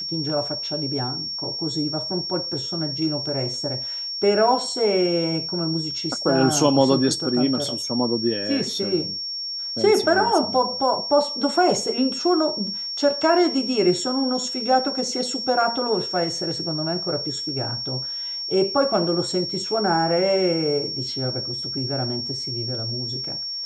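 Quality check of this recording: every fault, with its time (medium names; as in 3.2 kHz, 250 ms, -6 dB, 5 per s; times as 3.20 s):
whine 5.5 kHz -27 dBFS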